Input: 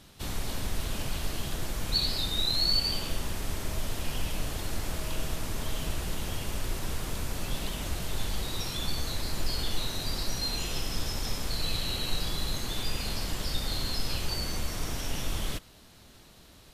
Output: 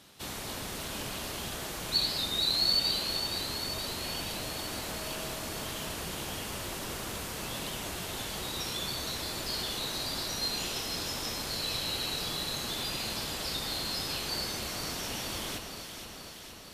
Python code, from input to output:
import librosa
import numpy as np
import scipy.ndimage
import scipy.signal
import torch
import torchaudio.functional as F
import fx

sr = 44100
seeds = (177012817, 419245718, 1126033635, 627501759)

p1 = fx.highpass(x, sr, hz=270.0, slope=6)
y = p1 + fx.echo_alternate(p1, sr, ms=235, hz=1500.0, feedback_pct=81, wet_db=-6.0, dry=0)